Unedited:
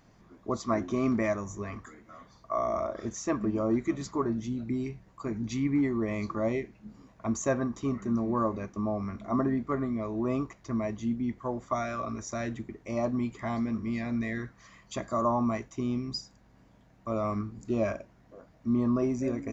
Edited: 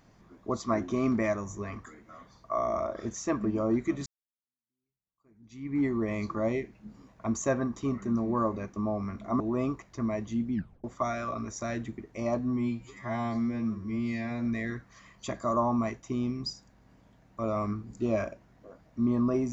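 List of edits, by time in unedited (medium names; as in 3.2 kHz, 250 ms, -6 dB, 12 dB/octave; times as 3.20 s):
4.06–5.82 s: fade in exponential
9.40–10.11 s: delete
11.25 s: tape stop 0.30 s
13.10–14.13 s: stretch 2×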